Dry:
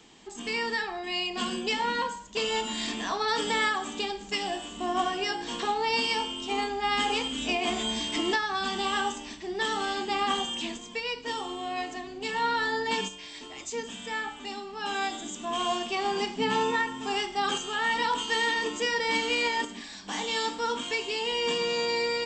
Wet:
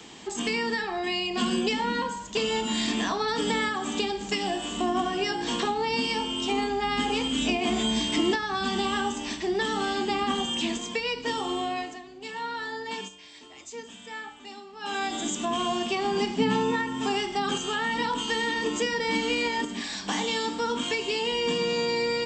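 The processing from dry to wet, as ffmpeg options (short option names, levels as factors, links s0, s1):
-filter_complex "[0:a]asplit=3[s0][s1][s2];[s0]atrim=end=11.99,asetpts=PTS-STARTPTS,afade=t=out:st=11.58:d=0.41:silence=0.188365[s3];[s1]atrim=start=11.99:end=14.8,asetpts=PTS-STARTPTS,volume=0.188[s4];[s2]atrim=start=14.8,asetpts=PTS-STARTPTS,afade=t=in:d=0.41:silence=0.188365[s5];[s3][s4][s5]concat=n=3:v=0:a=1,highpass=51,acrossover=split=310[s6][s7];[s7]acompressor=threshold=0.0141:ratio=4[s8];[s6][s8]amix=inputs=2:normalize=0,volume=2.82"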